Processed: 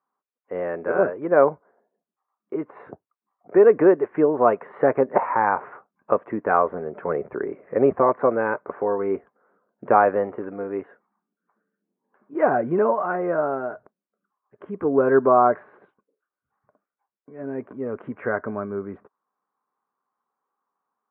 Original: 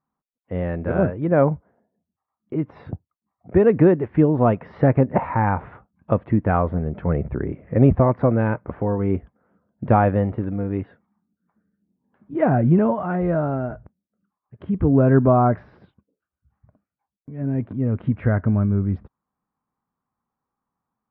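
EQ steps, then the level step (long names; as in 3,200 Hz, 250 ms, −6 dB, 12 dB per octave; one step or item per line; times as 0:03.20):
high-frequency loss of the air 83 metres
loudspeaker in its box 410–2,500 Hz, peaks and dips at 410 Hz +7 dB, 640 Hz +5 dB, 1,100 Hz +6 dB, 1,500 Hz +4 dB
notch filter 650 Hz, Q 12
0.0 dB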